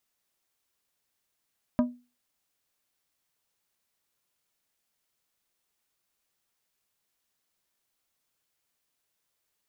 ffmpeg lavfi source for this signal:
-f lavfi -i "aevalsrc='0.141*pow(10,-3*t/0.31)*sin(2*PI*245*t)+0.0668*pow(10,-3*t/0.163)*sin(2*PI*612.5*t)+0.0316*pow(10,-3*t/0.117)*sin(2*PI*980*t)+0.015*pow(10,-3*t/0.1)*sin(2*PI*1225*t)+0.00708*pow(10,-3*t/0.084)*sin(2*PI*1592.5*t)':d=0.89:s=44100"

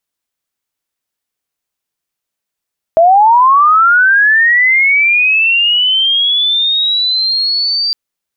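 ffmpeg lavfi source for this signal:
-f lavfi -i "aevalsrc='pow(10,(-3.5-8*t/4.96)/20)*sin(2*PI*(640*t+4060*t*t/(2*4.96)))':d=4.96:s=44100"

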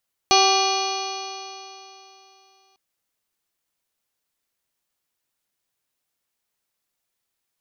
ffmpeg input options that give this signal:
-f lavfi -i "aevalsrc='0.0891*pow(10,-3*t/3.08)*sin(2*PI*384.54*t)+0.158*pow(10,-3*t/3.08)*sin(2*PI*772.29*t)+0.0891*pow(10,-3*t/3.08)*sin(2*PI*1166.42*t)+0.015*pow(10,-3*t/3.08)*sin(2*PI*1570.03*t)+0.0126*pow(10,-3*t/3.08)*sin(2*PI*1986.06*t)+0.0708*pow(10,-3*t/3.08)*sin(2*PI*2417.33*t)+0.0562*pow(10,-3*t/3.08)*sin(2*PI*2866.47*t)+0.0531*pow(10,-3*t/3.08)*sin(2*PI*3335.91*t)+0.0316*pow(10,-3*t/3.08)*sin(2*PI*3827.9*t)+0.112*pow(10,-3*t/3.08)*sin(2*PI*4344.46*t)+0.0355*pow(10,-3*t/3.08)*sin(2*PI*4887.44*t)+0.0355*pow(10,-3*t/3.08)*sin(2*PI*5458.49*t)+0.0708*pow(10,-3*t/3.08)*sin(2*PI*6059.06*t)':d=2.45:s=44100"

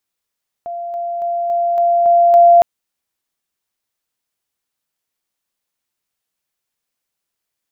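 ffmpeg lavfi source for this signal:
-f lavfi -i "aevalsrc='pow(10,(-22.5+3*floor(t/0.28))/20)*sin(2*PI*690*t)':d=1.96:s=44100"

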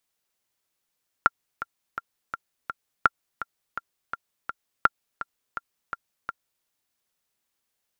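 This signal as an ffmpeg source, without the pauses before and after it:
-f lavfi -i "aevalsrc='pow(10,(-3-14*gte(mod(t,5*60/167),60/167))/20)*sin(2*PI*1380*mod(t,60/167))*exp(-6.91*mod(t,60/167)/0.03)':d=5.38:s=44100"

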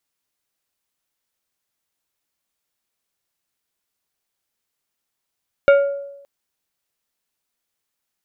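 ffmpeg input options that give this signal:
-f lavfi -i "aevalsrc='0.473*pow(10,-3*t/0.9)*sin(2*PI*561*t)+0.188*pow(10,-3*t/0.474)*sin(2*PI*1402.5*t)+0.075*pow(10,-3*t/0.341)*sin(2*PI*2244*t)+0.0299*pow(10,-3*t/0.292)*sin(2*PI*2805*t)+0.0119*pow(10,-3*t/0.243)*sin(2*PI*3646.5*t)':d=0.57:s=44100"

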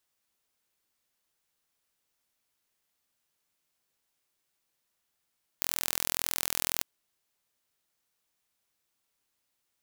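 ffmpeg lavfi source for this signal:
-f lavfi -i "aevalsrc='0.794*eq(mod(n,1053),0)':d=1.2:s=44100"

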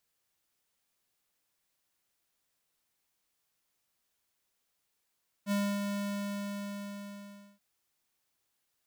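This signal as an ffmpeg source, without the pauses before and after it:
-f lavfi -i "aevalsrc='0.0355*(2*lt(mod(202*t,1),0.5)-1)':d=2.13:s=44100,afade=t=in:d=0.055,afade=t=out:st=0.055:d=0.28:silence=0.562,afade=t=out:st=0.47:d=1.66"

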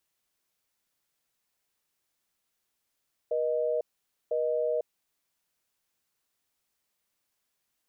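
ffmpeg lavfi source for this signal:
-f lavfi -i "aevalsrc='0.0398*(sin(2*PI*480*t)+sin(2*PI*620*t))*clip(min(mod(t,1),0.5-mod(t,1))/0.005,0,1)':d=1.67:s=44100"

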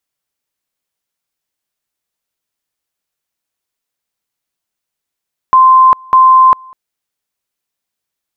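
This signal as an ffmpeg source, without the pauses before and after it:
-f lavfi -i "aevalsrc='pow(10,(-2.5-29*gte(mod(t,0.6),0.4))/20)*sin(2*PI*1040*t)':d=1.2:s=44100"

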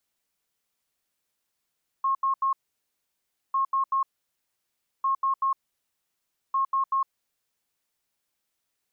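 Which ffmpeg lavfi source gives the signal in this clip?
-f lavfi -i "aevalsrc='0.0891*sin(2*PI*1080*t)*clip(min(mod(mod(t,1.5),0.19),0.11-mod(mod(t,1.5),0.19))/0.005,0,1)*lt(mod(t,1.5),0.57)':d=6:s=44100"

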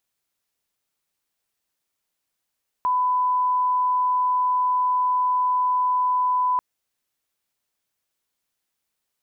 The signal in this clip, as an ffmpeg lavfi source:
-f lavfi -i "sine=f=1000:d=3.74:r=44100,volume=0.06dB"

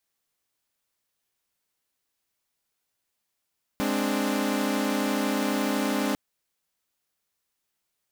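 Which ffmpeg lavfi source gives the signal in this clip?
-f lavfi -i "aevalsrc='0.0501*((2*mod(207.65*t,1)-1)+(2*mod(261.63*t,1)-1)+(2*mod(293.66*t,1)-1))':d=2.35:s=44100"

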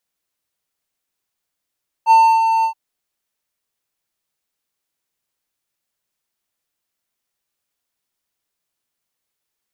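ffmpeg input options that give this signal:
-f lavfi -i "aevalsrc='0.631*(1-4*abs(mod(899*t+0.25,1)-0.5))':d=0.674:s=44100,afade=t=in:d=0.05,afade=t=out:st=0.05:d=0.295:silence=0.447,afade=t=out:st=0.58:d=0.094"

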